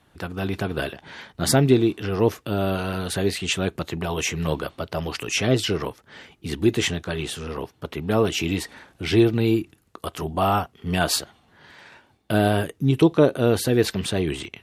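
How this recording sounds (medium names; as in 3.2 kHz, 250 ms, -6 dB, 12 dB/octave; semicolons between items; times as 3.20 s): noise floor -61 dBFS; spectral tilt -5.0 dB/octave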